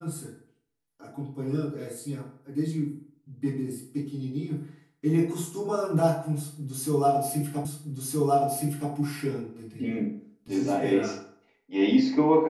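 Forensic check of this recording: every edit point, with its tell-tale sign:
0:07.65: the same again, the last 1.27 s

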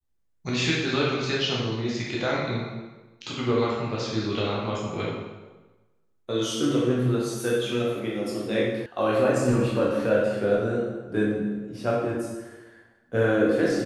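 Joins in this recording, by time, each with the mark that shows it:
0:08.86: cut off before it has died away

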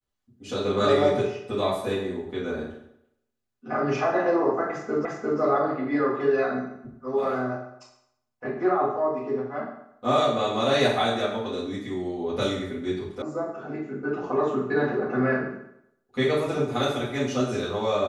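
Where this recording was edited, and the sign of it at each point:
0:05.05: the same again, the last 0.35 s
0:13.22: cut off before it has died away

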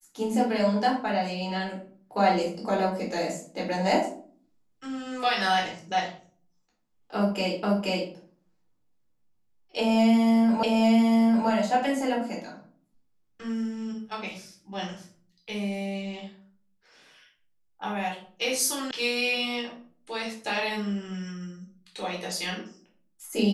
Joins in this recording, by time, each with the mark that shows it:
0:07.63: the same again, the last 0.48 s
0:10.63: the same again, the last 0.85 s
0:18.91: cut off before it has died away

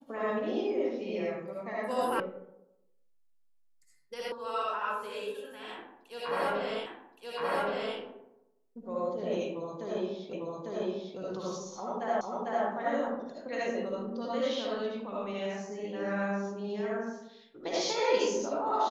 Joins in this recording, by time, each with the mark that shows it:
0:02.20: cut off before it has died away
0:04.32: cut off before it has died away
0:06.86: the same again, the last 1.12 s
0:10.33: the same again, the last 0.85 s
0:12.21: the same again, the last 0.45 s

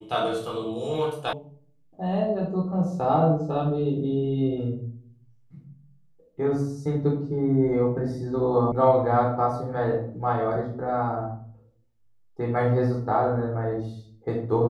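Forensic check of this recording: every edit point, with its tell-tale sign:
0:01.33: cut off before it has died away
0:08.72: cut off before it has died away

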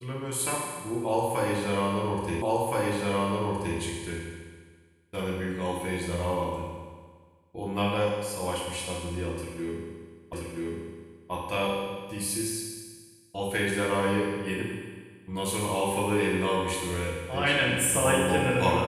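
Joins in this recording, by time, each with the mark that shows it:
0:02.42: the same again, the last 1.37 s
0:10.33: the same again, the last 0.98 s

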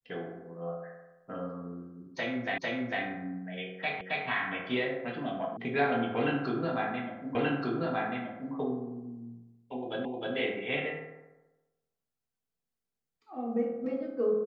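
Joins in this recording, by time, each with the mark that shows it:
0:02.58: the same again, the last 0.45 s
0:04.01: the same again, the last 0.27 s
0:05.57: cut off before it has died away
0:07.35: the same again, the last 1.18 s
0:10.05: the same again, the last 0.31 s

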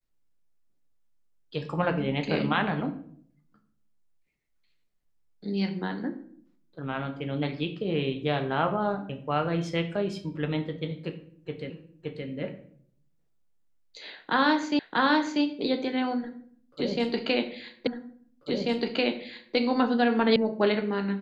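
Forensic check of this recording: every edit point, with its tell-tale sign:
0:11.70: the same again, the last 0.57 s
0:14.79: the same again, the last 0.64 s
0:17.87: the same again, the last 1.69 s
0:20.36: cut off before it has died away

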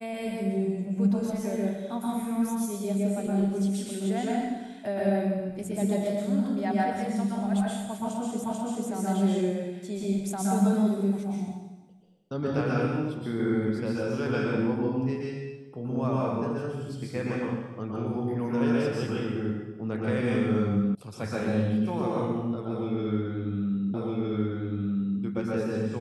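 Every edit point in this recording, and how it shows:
0:08.44: the same again, the last 0.44 s
0:20.95: cut off before it has died away
0:23.94: the same again, the last 1.26 s

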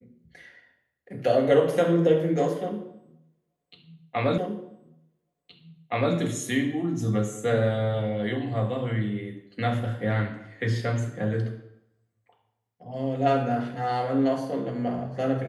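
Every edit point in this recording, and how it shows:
0:04.38: the same again, the last 1.77 s

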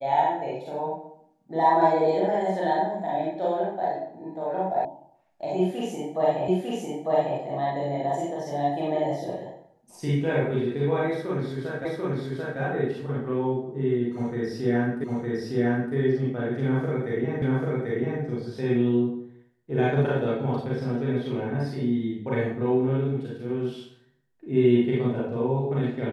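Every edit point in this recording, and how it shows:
0:04.85: cut off before it has died away
0:06.48: the same again, the last 0.9 s
0:11.85: the same again, the last 0.74 s
0:15.04: the same again, the last 0.91 s
0:17.42: the same again, the last 0.79 s

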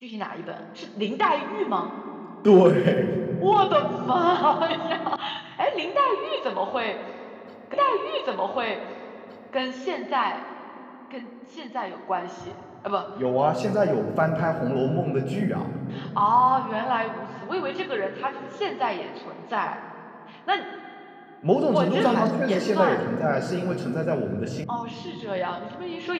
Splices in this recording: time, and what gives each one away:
0:05.16: cut off before it has died away
0:07.74: the same again, the last 1.82 s
0:24.64: cut off before it has died away

